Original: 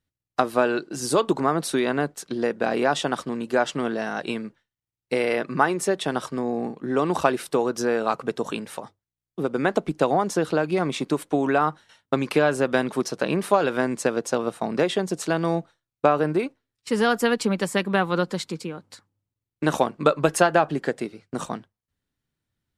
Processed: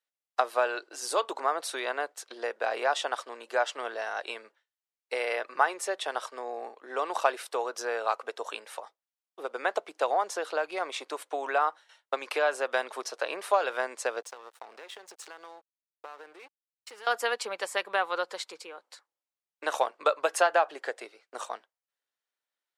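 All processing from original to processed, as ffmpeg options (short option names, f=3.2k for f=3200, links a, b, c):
-filter_complex "[0:a]asettb=1/sr,asplit=3[a][b][c];[a]atrim=end=14.224[d];[b]atrim=start=14.22:end=17.07,asetpts=PTS-STARTPTS,afade=t=in:d=0.004:c=qsin,afade=t=out:st=2.846:d=0.004:c=qsin,equalizer=f=620:w=6.2:g=-13.5,acompressor=threshold=-32dB:ratio=6:attack=3.2:release=140:knee=1:detection=peak,aeval=exprs='sgn(val(0))*max(abs(val(0))-0.00531,0)':c=same[e];[c]atrim=start=17.066[f];[d][e]acrossfade=d=0.004:c1=hsin:c2=qsin[g];[g][f]acrossfade=d=0.004:c1=qsin:c2=hsin,highpass=f=530:w=0.5412,highpass=f=530:w=1.3066,highshelf=f=9.2k:g=-5,volume=-3.5dB"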